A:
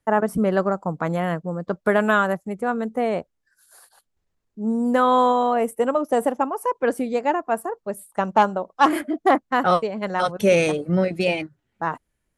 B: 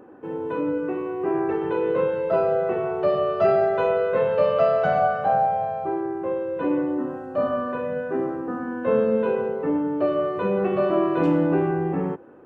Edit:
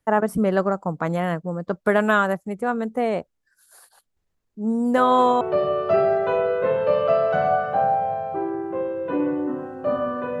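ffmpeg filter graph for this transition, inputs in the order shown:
-filter_complex "[1:a]asplit=2[a][b];[0:a]apad=whole_dur=10.4,atrim=end=10.4,atrim=end=5.412[c];[b]atrim=start=2.918:end=7.91[d];[a]atrim=start=2.48:end=2.92,asetpts=PTS-STARTPTS,volume=-7.5dB,afade=t=in:d=0.004:c=hsin,afade=t=out:st=0.436:d=0.004:c=hsin,adelay=219177S[e];[c][d]acrossfade=d=0.004:c1=hsin:c2=hsin[f];[f][e]amix=inputs=2:normalize=0"

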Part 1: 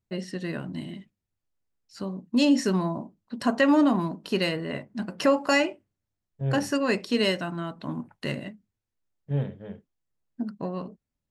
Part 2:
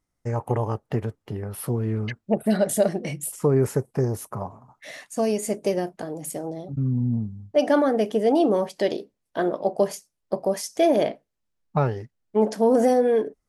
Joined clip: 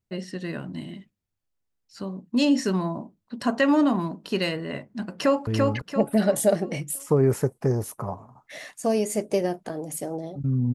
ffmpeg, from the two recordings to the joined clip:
-filter_complex "[0:a]apad=whole_dur=10.74,atrim=end=10.74,atrim=end=5.472[a];[1:a]atrim=start=1.798:end=7.07[b];[a][b]acrossfade=d=0.004:c1=hsin:c2=hsin,asplit=2[c][d];[d]afade=t=in:st=5.17:d=0.01,afade=t=out:st=5.47:d=0.01,aecho=0:1:340|680|1020|1360|1700:0.749894|0.299958|0.119983|0.0479932|0.0191973[e];[c][e]amix=inputs=2:normalize=0"

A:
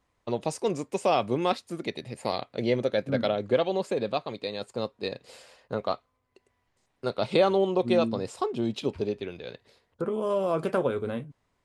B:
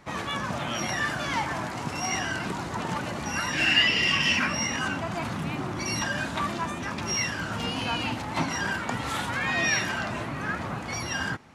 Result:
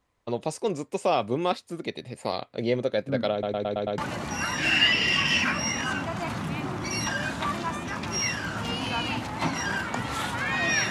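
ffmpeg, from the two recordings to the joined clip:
-filter_complex "[0:a]apad=whole_dur=10.9,atrim=end=10.9,asplit=6[a][b][c][d][e][f];[a]atrim=end=3.432[g];[b]atrim=start=3.318:end=3.432[h];[c]atrim=start=3.318:end=3.432[i];[d]atrim=start=3.318:end=3.432[j];[e]atrim=start=3.318:end=3.432[k];[f]atrim=start=3.318:end=3.432[l];[1:a]atrim=start=2.928:end=9.85[m];[g][h]acrossfade=d=0.004:c1=hsin:c2=hsin[n];[n][i]acrossfade=d=0.004:c1=hsin:c2=hsin[o];[o][j]acrossfade=d=0.004:c1=hsin:c2=hsin[p];[p][k]acrossfade=d=0.004:c1=hsin:c2=hsin[q];[q][l]acrossfade=d=0.004:c1=hsin:c2=hsin[r];[r][m]acrossfade=d=0.004:c1=hsin:c2=hsin"

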